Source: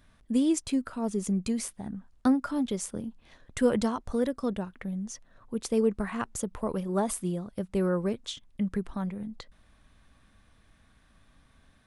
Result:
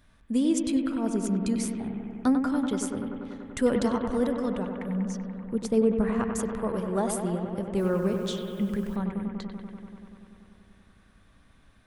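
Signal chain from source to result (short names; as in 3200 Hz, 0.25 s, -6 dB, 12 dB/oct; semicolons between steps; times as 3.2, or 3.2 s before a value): 4.89–6.27 tilt shelf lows +4 dB, about 1200 Hz; 7.78–8.96 requantised 10-bit, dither triangular; analogue delay 96 ms, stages 2048, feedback 82%, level -7 dB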